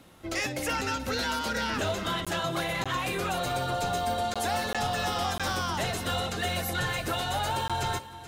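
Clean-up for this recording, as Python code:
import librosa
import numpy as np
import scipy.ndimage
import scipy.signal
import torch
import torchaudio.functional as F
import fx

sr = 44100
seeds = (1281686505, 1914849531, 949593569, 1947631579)

y = fx.fix_declip(x, sr, threshold_db=-21.0)
y = fx.fix_interpolate(y, sr, at_s=(2.25, 2.84, 4.34, 4.73, 5.38, 7.68), length_ms=16.0)
y = fx.fix_echo_inverse(y, sr, delay_ms=431, level_db=-14.5)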